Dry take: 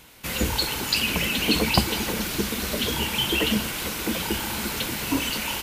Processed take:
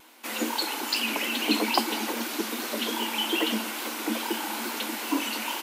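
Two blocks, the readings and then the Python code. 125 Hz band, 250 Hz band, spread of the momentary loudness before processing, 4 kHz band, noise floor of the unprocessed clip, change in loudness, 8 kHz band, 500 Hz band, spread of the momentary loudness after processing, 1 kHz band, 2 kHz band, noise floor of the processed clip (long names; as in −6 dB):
below −15 dB, −2.5 dB, 6 LU, −4.0 dB, −32 dBFS, −3.5 dB, −4.5 dB, −3.0 dB, 6 LU, +1.0 dB, −3.5 dB, −35 dBFS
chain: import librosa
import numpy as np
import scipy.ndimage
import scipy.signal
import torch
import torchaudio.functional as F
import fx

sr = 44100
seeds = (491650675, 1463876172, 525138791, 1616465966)

y = scipy.signal.sosfilt(scipy.signal.cheby1(6, 6, 220.0, 'highpass', fs=sr, output='sos'), x)
y = fx.vibrato(y, sr, rate_hz=2.4, depth_cents=42.0)
y = F.gain(torch.from_numpy(y), 1.5).numpy()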